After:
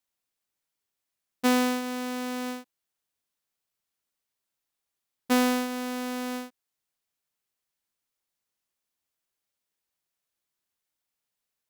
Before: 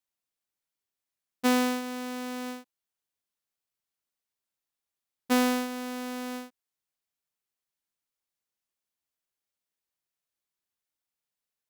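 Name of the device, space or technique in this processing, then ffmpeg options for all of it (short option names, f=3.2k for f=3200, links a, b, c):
parallel compression: -filter_complex "[0:a]asplit=2[a][b];[b]acompressor=threshold=-34dB:ratio=6,volume=-5.5dB[c];[a][c]amix=inputs=2:normalize=0"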